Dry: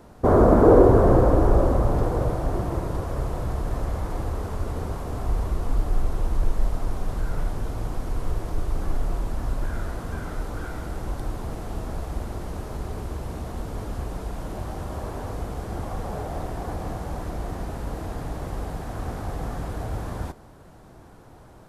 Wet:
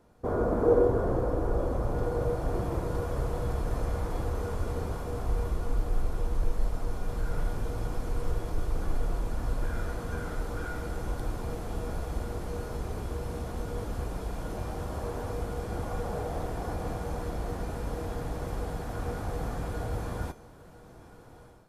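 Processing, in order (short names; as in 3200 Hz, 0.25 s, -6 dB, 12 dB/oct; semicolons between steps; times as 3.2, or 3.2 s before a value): AGC gain up to 10.5 dB; resonator 480 Hz, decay 0.3 s, harmonics odd, mix 80%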